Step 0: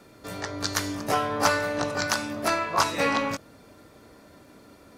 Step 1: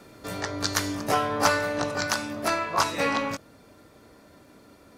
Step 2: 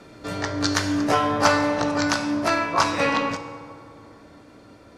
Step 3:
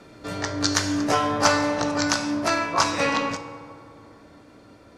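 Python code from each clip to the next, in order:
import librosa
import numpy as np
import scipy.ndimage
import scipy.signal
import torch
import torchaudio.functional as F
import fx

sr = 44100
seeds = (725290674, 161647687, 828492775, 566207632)

y1 = fx.rider(x, sr, range_db=3, speed_s=2.0)
y2 = scipy.signal.sosfilt(scipy.signal.bessel(2, 6200.0, 'lowpass', norm='mag', fs=sr, output='sos'), y1)
y2 = fx.rev_fdn(y2, sr, rt60_s=2.4, lf_ratio=1.4, hf_ratio=0.45, size_ms=19.0, drr_db=7.5)
y2 = F.gain(torch.from_numpy(y2), 3.5).numpy()
y3 = fx.dynamic_eq(y2, sr, hz=6600.0, q=1.1, threshold_db=-42.0, ratio=4.0, max_db=6)
y3 = F.gain(torch.from_numpy(y3), -1.5).numpy()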